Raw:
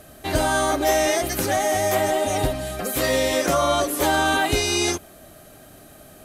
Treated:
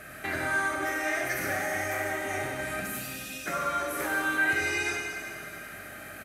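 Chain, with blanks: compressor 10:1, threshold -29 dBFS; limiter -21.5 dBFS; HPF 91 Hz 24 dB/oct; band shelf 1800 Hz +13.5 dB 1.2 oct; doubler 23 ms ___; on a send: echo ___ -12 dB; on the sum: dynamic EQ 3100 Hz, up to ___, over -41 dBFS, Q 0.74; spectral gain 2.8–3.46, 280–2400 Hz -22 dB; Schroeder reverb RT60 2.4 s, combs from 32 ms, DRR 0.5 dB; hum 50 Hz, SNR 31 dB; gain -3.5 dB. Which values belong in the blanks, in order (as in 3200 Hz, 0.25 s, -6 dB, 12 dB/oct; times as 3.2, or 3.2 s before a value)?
-11 dB, 94 ms, -5 dB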